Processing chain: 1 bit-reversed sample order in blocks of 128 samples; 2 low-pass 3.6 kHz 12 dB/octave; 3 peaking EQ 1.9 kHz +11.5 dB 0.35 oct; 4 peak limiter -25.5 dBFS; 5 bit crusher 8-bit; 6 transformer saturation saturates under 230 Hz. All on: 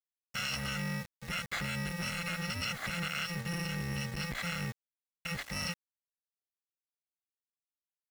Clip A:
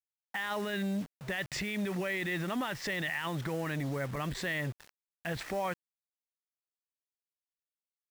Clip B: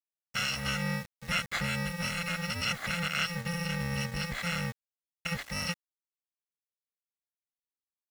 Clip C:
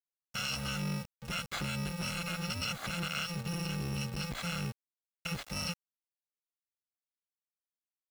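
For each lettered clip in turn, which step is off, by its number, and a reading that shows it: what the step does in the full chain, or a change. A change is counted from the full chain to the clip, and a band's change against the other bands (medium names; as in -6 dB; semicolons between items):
1, 500 Hz band +9.5 dB; 4, mean gain reduction 2.0 dB; 3, 2 kHz band -4.0 dB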